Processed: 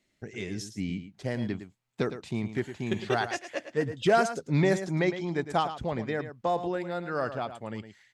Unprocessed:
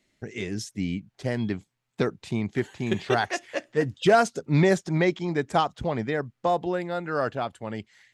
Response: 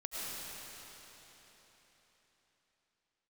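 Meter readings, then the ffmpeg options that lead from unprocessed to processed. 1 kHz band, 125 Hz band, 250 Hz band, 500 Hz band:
-3.5 dB, -3.5 dB, -3.5 dB, -3.5 dB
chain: -af "aecho=1:1:109:0.282,volume=0.631"

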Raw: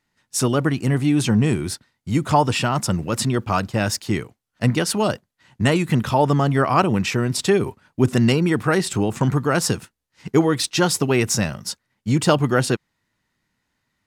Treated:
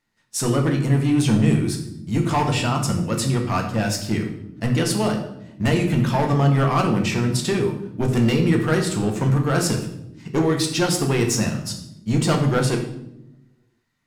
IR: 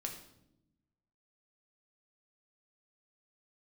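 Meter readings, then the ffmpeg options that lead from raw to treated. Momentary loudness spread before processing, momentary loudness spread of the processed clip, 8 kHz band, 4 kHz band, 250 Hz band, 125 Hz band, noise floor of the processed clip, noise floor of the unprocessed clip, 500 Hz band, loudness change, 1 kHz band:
8 LU, 9 LU, -1.5 dB, -1.5 dB, 0.0 dB, +1.0 dB, -63 dBFS, -76 dBFS, -2.0 dB, -1.0 dB, -3.0 dB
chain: -filter_complex "[0:a]asoftclip=type=hard:threshold=0.211[s0];[1:a]atrim=start_sample=2205[s1];[s0][s1]afir=irnorm=-1:irlink=0"

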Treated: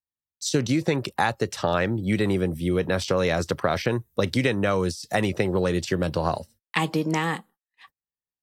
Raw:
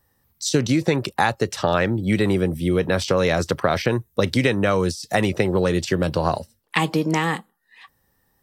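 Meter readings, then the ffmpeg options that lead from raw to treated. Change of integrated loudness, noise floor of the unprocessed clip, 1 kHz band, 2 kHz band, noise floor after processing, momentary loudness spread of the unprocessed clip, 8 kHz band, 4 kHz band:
-3.5 dB, -67 dBFS, -3.5 dB, -3.5 dB, under -85 dBFS, 4 LU, -3.5 dB, -3.5 dB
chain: -af "agate=range=0.02:threshold=0.00447:ratio=16:detection=peak,volume=0.668"

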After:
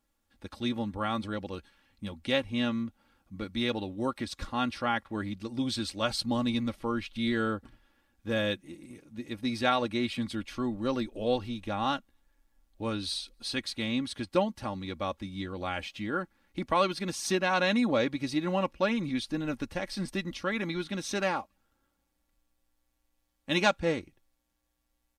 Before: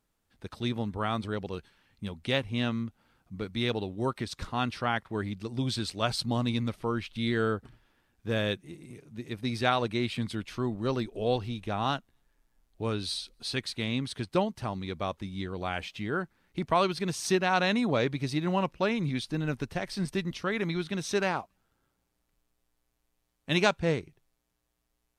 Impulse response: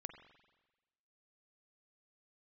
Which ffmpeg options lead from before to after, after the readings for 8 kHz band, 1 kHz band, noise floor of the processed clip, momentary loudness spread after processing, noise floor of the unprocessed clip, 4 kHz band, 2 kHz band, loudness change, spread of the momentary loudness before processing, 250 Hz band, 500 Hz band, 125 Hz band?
0.0 dB, -0.5 dB, -78 dBFS, 11 LU, -78 dBFS, 0.0 dB, 0.0 dB, -0.5 dB, 10 LU, +0.5 dB, -1.0 dB, -5.5 dB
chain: -af "aecho=1:1:3.6:0.59,volume=0.841"

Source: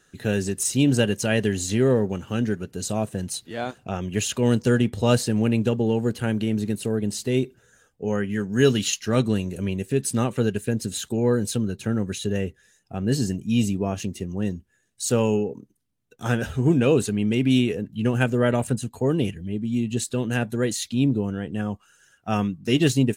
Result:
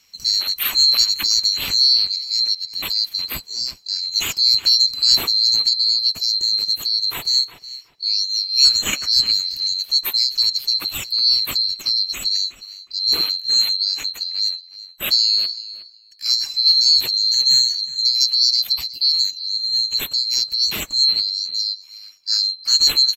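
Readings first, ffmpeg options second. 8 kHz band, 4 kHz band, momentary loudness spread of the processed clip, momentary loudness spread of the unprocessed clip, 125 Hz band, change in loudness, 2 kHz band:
+4.5 dB, +22.0 dB, 10 LU, 10 LU, under -20 dB, +8.0 dB, -1.5 dB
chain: -filter_complex "[0:a]afftfilt=real='real(if(lt(b,736),b+184*(1-2*mod(floor(b/184),2)),b),0)':imag='imag(if(lt(b,736),b+184*(1-2*mod(floor(b/184),2)),b),0)':win_size=2048:overlap=0.75,asplit=2[s0][s1];[s1]adelay=365,lowpass=f=3600:p=1,volume=0.224,asplit=2[s2][s3];[s3]adelay=365,lowpass=f=3600:p=1,volume=0.2[s4];[s2][s4]amix=inputs=2:normalize=0[s5];[s0][s5]amix=inputs=2:normalize=0,volume=1.58"

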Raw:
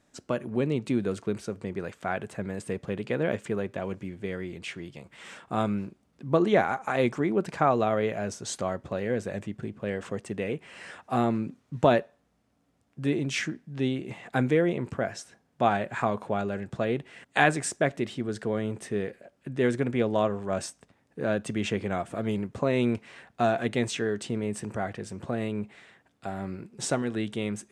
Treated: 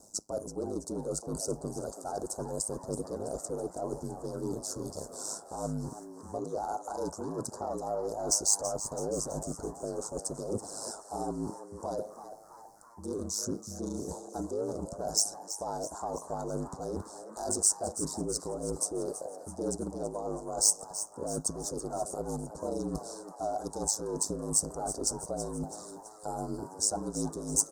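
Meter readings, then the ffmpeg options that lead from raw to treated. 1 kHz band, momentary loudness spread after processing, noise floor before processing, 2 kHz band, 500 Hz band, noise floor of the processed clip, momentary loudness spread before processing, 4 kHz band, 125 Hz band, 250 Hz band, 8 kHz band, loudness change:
-7.5 dB, 11 LU, -70 dBFS, -26.5 dB, -7.0 dB, -50 dBFS, 12 LU, -1.0 dB, -8.5 dB, -8.5 dB, +11.5 dB, -4.5 dB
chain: -filter_complex "[0:a]asplit=2[s0][s1];[s1]highpass=f=720:p=1,volume=3.98,asoftclip=type=tanh:threshold=0.596[s2];[s0][s2]amix=inputs=2:normalize=0,lowpass=f=4000:p=1,volume=0.501,equalizer=f=1200:t=o:w=0.32:g=-15,areverse,acompressor=threshold=0.0158:ratio=10,areverse,asoftclip=type=tanh:threshold=0.0266,aeval=exprs='val(0)*sin(2*PI*52*n/s)':c=same,aexciter=amount=12.3:drive=3.5:freq=3400,highshelf=f=3700:t=q:w=3:g=-7.5,aphaser=in_gain=1:out_gain=1:delay=3.1:decay=0.31:speed=0.66:type=triangular,asuperstop=centerf=2500:order=12:qfactor=0.71,asplit=2[s3][s4];[s4]asplit=6[s5][s6][s7][s8][s9][s10];[s5]adelay=329,afreqshift=130,volume=0.251[s11];[s6]adelay=658,afreqshift=260,volume=0.135[s12];[s7]adelay=987,afreqshift=390,volume=0.0733[s13];[s8]adelay=1316,afreqshift=520,volume=0.0394[s14];[s9]adelay=1645,afreqshift=650,volume=0.0214[s15];[s10]adelay=1974,afreqshift=780,volume=0.0115[s16];[s11][s12][s13][s14][s15][s16]amix=inputs=6:normalize=0[s17];[s3][s17]amix=inputs=2:normalize=0,volume=2.51"

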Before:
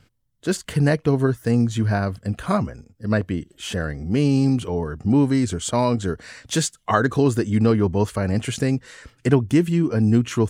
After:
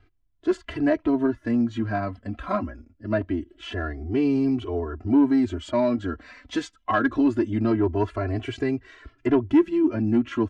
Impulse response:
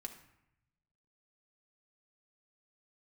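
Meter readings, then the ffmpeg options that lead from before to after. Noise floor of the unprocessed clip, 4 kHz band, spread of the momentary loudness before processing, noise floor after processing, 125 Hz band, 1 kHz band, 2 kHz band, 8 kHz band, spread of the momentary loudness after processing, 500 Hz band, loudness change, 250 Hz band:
-62 dBFS, -8.0 dB, 10 LU, -64 dBFS, -11.0 dB, -3.0 dB, -3.5 dB, under -20 dB, 11 LU, -3.0 dB, -3.0 dB, -1.5 dB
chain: -af "lowpass=2600,flanger=delay=2.5:depth=1.5:regen=-5:speed=0.23:shape=triangular,aecho=1:1:3:0.87,acontrast=71,volume=0.398"

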